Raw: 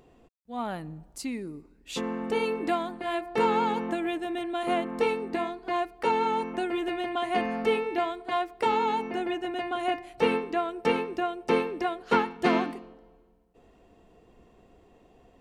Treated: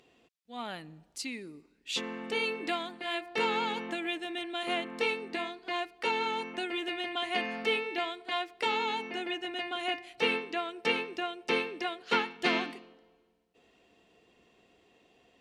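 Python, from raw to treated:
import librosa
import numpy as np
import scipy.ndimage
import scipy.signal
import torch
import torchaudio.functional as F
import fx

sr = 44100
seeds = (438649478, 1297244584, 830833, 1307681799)

y = fx.weighting(x, sr, curve='D')
y = y * librosa.db_to_amplitude(-6.5)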